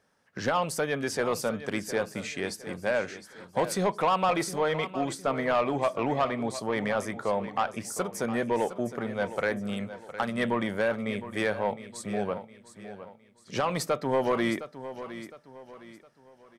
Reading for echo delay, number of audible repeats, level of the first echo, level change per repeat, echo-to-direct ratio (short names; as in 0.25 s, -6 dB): 0.711 s, 3, -13.0 dB, -8.5 dB, -12.5 dB